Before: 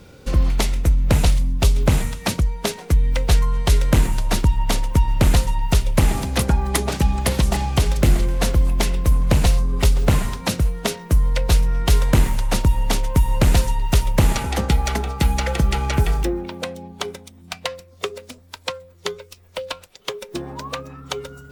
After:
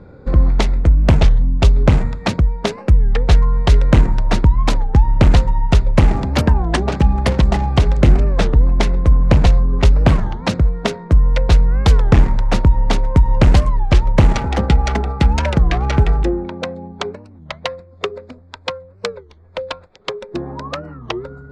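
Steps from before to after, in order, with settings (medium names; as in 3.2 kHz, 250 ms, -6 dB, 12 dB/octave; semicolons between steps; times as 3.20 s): local Wiener filter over 15 samples; distance through air 110 m; warped record 33 1/3 rpm, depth 250 cents; trim +5 dB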